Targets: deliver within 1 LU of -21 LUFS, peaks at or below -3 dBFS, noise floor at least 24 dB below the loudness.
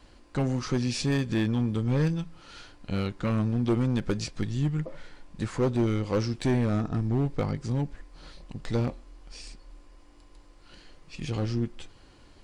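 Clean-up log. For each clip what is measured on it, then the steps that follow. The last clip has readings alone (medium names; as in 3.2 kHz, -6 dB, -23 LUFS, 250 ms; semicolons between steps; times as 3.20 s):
clipped samples 1.3%; clipping level -19.0 dBFS; loudness -29.0 LUFS; peak level -19.0 dBFS; loudness target -21.0 LUFS
-> clip repair -19 dBFS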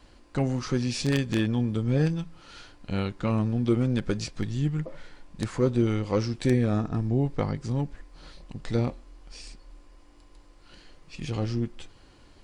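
clipped samples 0.0%; loudness -27.5 LUFS; peak level -10.0 dBFS; loudness target -21.0 LUFS
-> trim +6.5 dB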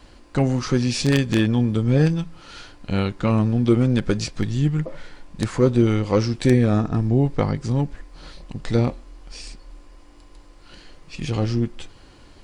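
loudness -21.0 LUFS; peak level -3.5 dBFS; noise floor -48 dBFS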